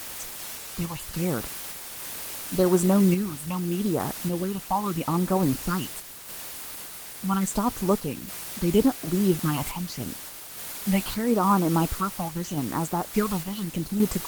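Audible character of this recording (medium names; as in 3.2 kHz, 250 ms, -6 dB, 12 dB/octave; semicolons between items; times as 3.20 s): phasing stages 6, 0.8 Hz, lowest notch 400–4000 Hz; a quantiser's noise floor 6-bit, dither triangular; random-step tremolo; Opus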